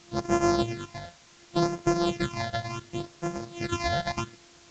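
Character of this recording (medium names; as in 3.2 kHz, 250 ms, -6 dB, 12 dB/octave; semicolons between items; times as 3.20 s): a buzz of ramps at a fixed pitch in blocks of 128 samples; phasing stages 8, 0.69 Hz, lowest notch 330–3800 Hz; a quantiser's noise floor 8-bit, dither triangular; µ-law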